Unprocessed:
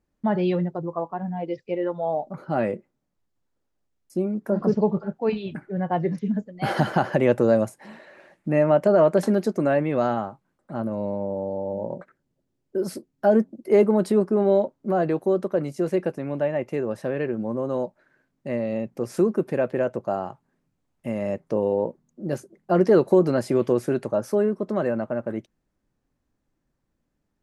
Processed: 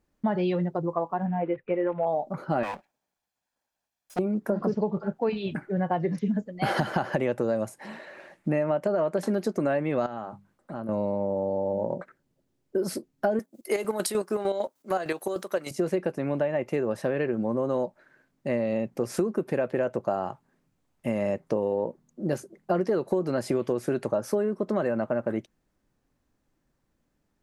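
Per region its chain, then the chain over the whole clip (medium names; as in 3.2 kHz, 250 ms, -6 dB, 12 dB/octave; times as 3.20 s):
1.26–2.07 s: block-companded coder 5-bit + steep low-pass 2.5 kHz
2.63–4.19 s: comb filter that takes the minimum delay 1.2 ms + high-pass 43 Hz + peaking EQ 90 Hz -15 dB 2.9 oct
10.06–10.89 s: hum notches 50/100/150/200 Hz + compression 3:1, threshold -36 dBFS
13.39–15.71 s: tilt EQ +4.5 dB/octave + square tremolo 6.6 Hz, depth 60%, duty 45%
whole clip: bass shelf 400 Hz -3 dB; compression 10:1, threshold -26 dBFS; trim +4 dB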